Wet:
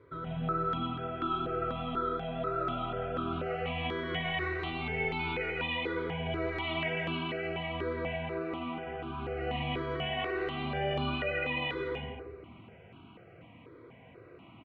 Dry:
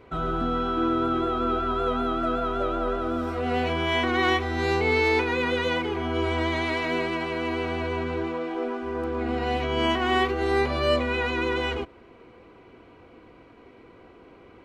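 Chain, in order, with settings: HPF 100 Hz 12 dB/oct; bell 130 Hz +13.5 dB 1.9 oct; limiter -18.5 dBFS, peak gain reduction 9.5 dB; ladder low-pass 3600 Hz, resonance 55%; echo 0.165 s -6.5 dB; digital reverb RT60 1.2 s, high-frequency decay 0.3×, pre-delay 0.1 s, DRR -2.5 dB; step phaser 4.1 Hz 760–1900 Hz; gain +1 dB

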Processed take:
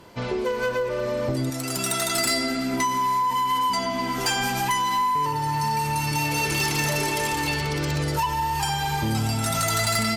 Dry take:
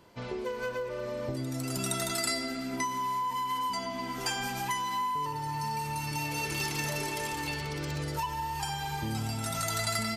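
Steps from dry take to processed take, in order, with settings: sine folder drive 8 dB, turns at -15.5 dBFS; 1.5–2.15 low shelf 360 Hz -8.5 dB; gain -2 dB

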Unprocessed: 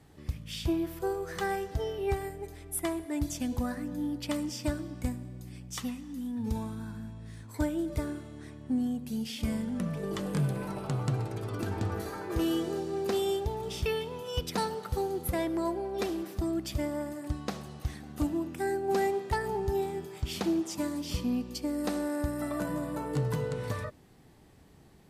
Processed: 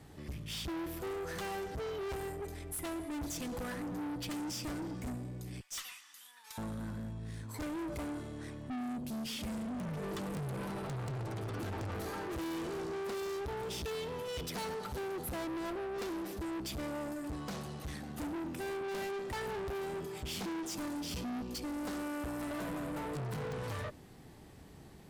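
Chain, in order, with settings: 3.35–5.02 comb 5.9 ms, depth 57%; 5.61–6.58 HPF 1200 Hz 24 dB/oct; tube stage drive 41 dB, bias 0.25; gain +4 dB

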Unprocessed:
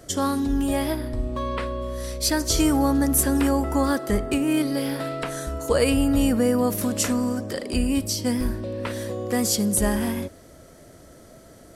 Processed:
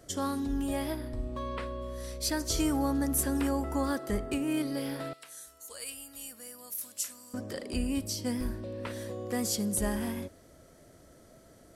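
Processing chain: 5.13–7.34 pre-emphasis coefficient 0.97; gain -8.5 dB

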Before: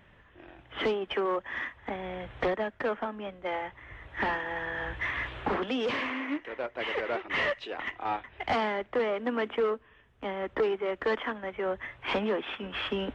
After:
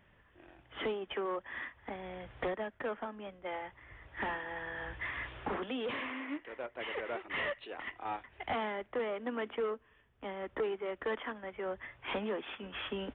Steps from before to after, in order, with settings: downsampling 8000 Hz; gain -7 dB

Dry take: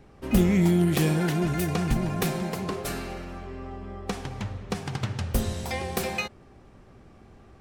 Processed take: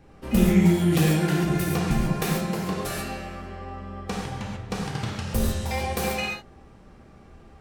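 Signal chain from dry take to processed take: non-linear reverb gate 0.16 s flat, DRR -2.5 dB; gain -2 dB

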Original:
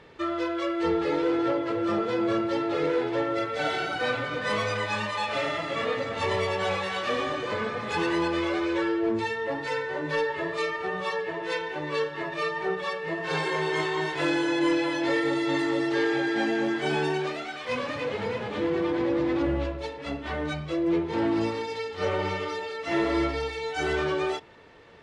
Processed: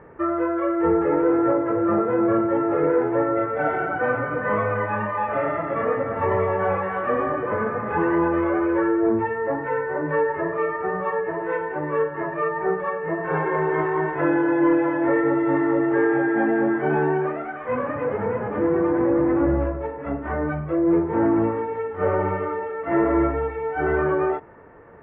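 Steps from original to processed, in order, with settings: inverse Chebyshev low-pass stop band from 4200 Hz, stop band 50 dB; gain +6 dB

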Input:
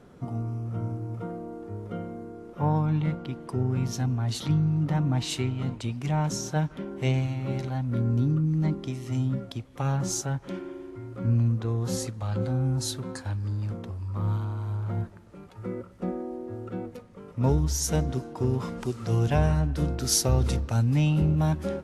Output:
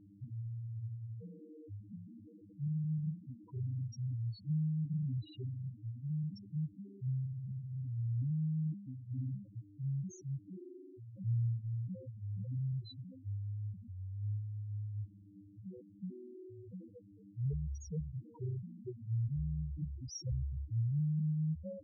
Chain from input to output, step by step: HPF 56 Hz 12 dB/oct; buzz 100 Hz, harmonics 3, -44 dBFS 0 dB/oct; loudest bins only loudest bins 2; gain -9 dB

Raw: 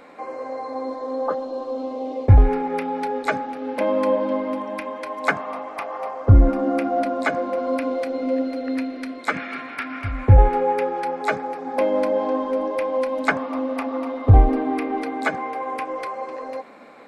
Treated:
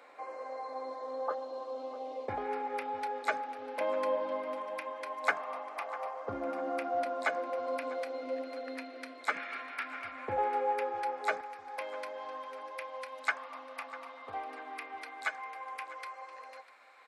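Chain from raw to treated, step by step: HPF 550 Hz 12 dB/oct, from 11.41 s 1200 Hz; feedback echo 0.648 s, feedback 36%, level -18.5 dB; gain -8 dB

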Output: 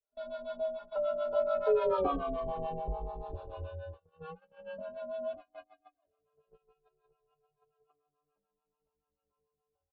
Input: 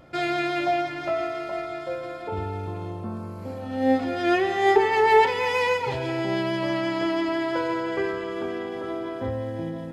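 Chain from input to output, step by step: ending faded out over 1.70 s; recorder AGC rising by 12 dB/s; Doppler pass-by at 2.05, 39 m/s, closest 11 m; low shelf 410 Hz +2.5 dB; fixed phaser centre 890 Hz, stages 4; comb 5.3 ms, depth 98%; shoebox room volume 420 m³, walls furnished, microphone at 0.56 m; harmonic tremolo 6.9 Hz, depth 100%, crossover 670 Hz; mistuned SSB -150 Hz 220–3400 Hz; gate -48 dBFS, range -28 dB; gain +2.5 dB

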